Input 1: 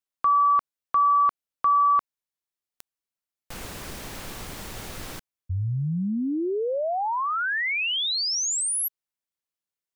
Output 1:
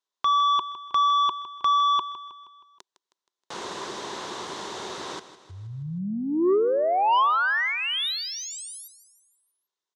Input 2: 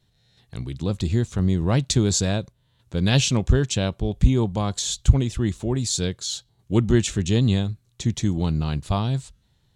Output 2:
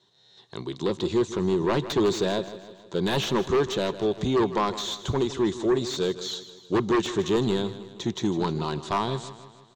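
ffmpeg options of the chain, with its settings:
-filter_complex "[0:a]highpass=250,equalizer=f=260:t=q:w=4:g=-4,equalizer=f=380:t=q:w=4:g=9,equalizer=f=1000:t=q:w=4:g=10,equalizer=f=2400:t=q:w=4:g=-6,equalizer=f=3700:t=q:w=4:g=7,equalizer=f=6200:t=q:w=4:g=3,lowpass=f=7400:w=0.5412,lowpass=f=7400:w=1.3066,asplit=2[s0][s1];[s1]aeval=exprs='0.631*sin(PI/2*5.01*val(0)/0.631)':c=same,volume=0.335[s2];[s0][s2]amix=inputs=2:normalize=0,acrossover=split=2900[s3][s4];[s4]acompressor=threshold=0.0316:ratio=4:attack=1:release=60[s5];[s3][s5]amix=inputs=2:normalize=0,aecho=1:1:158|316|474|632|790:0.2|0.102|0.0519|0.0265|0.0135,volume=0.376"

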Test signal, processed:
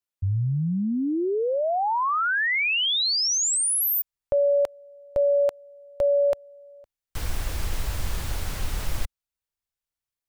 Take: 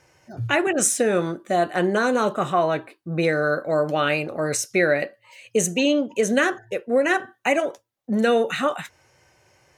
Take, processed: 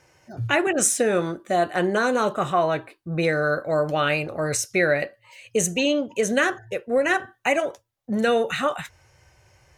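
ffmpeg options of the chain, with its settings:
-af "asubboost=boost=5.5:cutoff=95"

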